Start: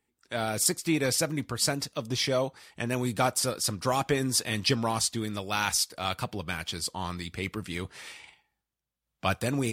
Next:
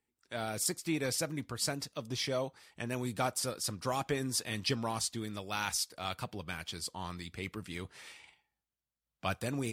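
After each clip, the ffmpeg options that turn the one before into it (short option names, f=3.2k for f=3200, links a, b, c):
-af "deesser=0.3,volume=-7dB"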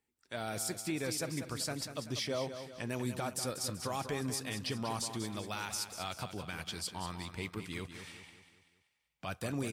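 -filter_complex "[0:a]alimiter=level_in=2.5dB:limit=-24dB:level=0:latency=1:release=83,volume=-2.5dB,asplit=2[a][b];[b]aecho=0:1:192|384|576|768|960:0.335|0.161|0.0772|0.037|0.0178[c];[a][c]amix=inputs=2:normalize=0"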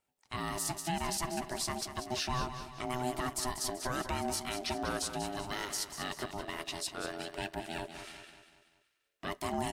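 -af "aeval=exprs='val(0)*sin(2*PI*500*n/s)':c=same,volume=4.5dB"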